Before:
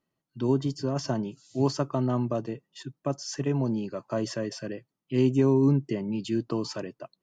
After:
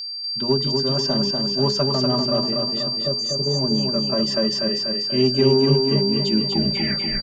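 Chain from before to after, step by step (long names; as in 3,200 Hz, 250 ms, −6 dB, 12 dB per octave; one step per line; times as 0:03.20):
turntable brake at the end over 0.91 s
notch filter 360 Hz, Q 12
healed spectral selection 0:03.05–0:03.56, 680–5,700 Hz both
mains-hum notches 60/120/180/240/300/360/420 Hz
comb filter 5.1 ms, depth 83%
in parallel at −11 dB: asymmetric clip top −32 dBFS
on the sum: steady tone 4,700 Hz −29 dBFS
on a send: repeating echo 243 ms, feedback 58%, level −4 dB
on the sum: level +1 dB
AAC 192 kbit/s 48,000 Hz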